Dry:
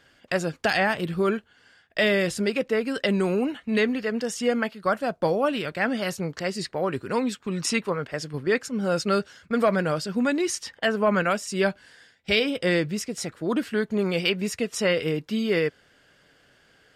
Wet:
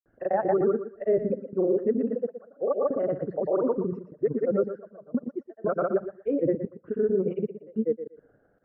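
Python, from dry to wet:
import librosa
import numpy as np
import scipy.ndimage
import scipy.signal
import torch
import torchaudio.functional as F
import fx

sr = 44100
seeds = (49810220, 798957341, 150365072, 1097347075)

p1 = fx.envelope_sharpen(x, sr, power=2.0)
p2 = scipy.signal.sosfilt(scipy.signal.butter(4, 1100.0, 'lowpass', fs=sr, output='sos'), p1)
p3 = fx.hum_notches(p2, sr, base_hz=60, count=3)
p4 = fx.level_steps(p3, sr, step_db=16)
p5 = p3 + (p4 * 10.0 ** (-3.0 / 20.0))
p6 = fx.stretch_vocoder(p5, sr, factor=0.51)
p7 = fx.step_gate(p6, sr, bpm=75, pattern='x.xxxxx.xxx..', floor_db=-24.0, edge_ms=4.5)
p8 = fx.granulator(p7, sr, seeds[0], grain_ms=100.0, per_s=20.0, spray_ms=100.0, spread_st=0)
y = p8 + fx.echo_thinned(p8, sr, ms=119, feedback_pct=21, hz=220.0, wet_db=-10.0, dry=0)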